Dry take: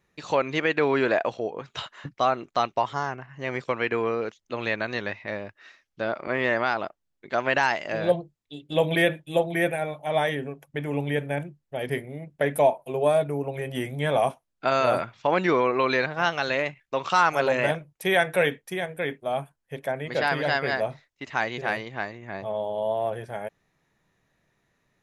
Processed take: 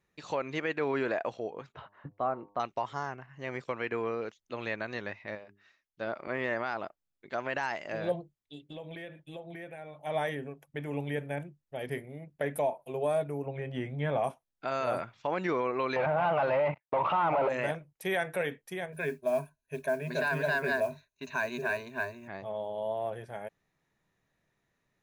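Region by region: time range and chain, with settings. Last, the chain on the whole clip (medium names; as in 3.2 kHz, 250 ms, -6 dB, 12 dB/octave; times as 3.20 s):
1.72–2.60 s: low-pass 1.2 kHz + de-hum 101.2 Hz, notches 11
5.35–6.07 s: hum notches 50/100/150/200/250/300/350/400 Hz + upward expansion, over -40 dBFS
8.65–10.01 s: treble shelf 7.5 kHz -11 dB + compression 5:1, threshold -34 dBFS
13.46–14.24 s: low-pass 6.1 kHz + tone controls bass +4 dB, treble -9 dB
15.96–17.49 s: hard clipper -12.5 dBFS + waveshaping leveller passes 5 + cabinet simulation 110–2400 Hz, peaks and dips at 240 Hz -7 dB, 400 Hz -4 dB, 620 Hz +8 dB, 900 Hz +8 dB, 1.7 kHz -9 dB
18.92–22.28 s: rippled EQ curve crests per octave 1.5, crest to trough 18 dB + modulation noise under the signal 28 dB
whole clip: dynamic bell 3.6 kHz, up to -4 dB, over -40 dBFS, Q 1.4; peak limiter -13.5 dBFS; trim -7 dB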